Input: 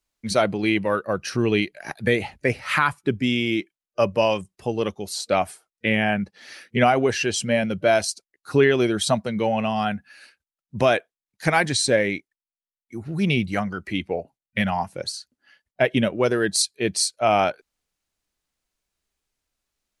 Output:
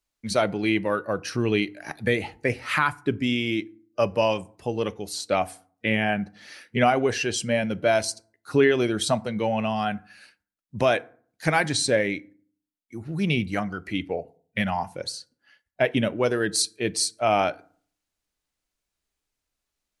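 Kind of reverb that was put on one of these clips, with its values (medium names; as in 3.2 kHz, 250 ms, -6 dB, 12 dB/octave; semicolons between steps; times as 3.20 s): FDN reverb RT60 0.49 s, low-frequency decay 1.25×, high-frequency decay 0.55×, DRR 16 dB; trim -2.5 dB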